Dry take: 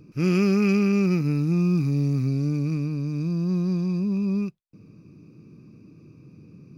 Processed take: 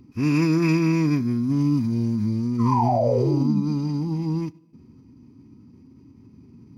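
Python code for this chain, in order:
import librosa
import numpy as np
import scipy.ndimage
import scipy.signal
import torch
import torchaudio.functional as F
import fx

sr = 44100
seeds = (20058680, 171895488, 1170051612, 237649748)

y = fx.spec_paint(x, sr, seeds[0], shape='fall', start_s=2.59, length_s=1.02, low_hz=230.0, high_hz=1300.0, level_db=-20.0)
y = fx.rev_double_slope(y, sr, seeds[1], early_s=0.67, late_s=2.3, knee_db=-18, drr_db=17.0)
y = fx.pitch_keep_formants(y, sr, semitones=-3.5)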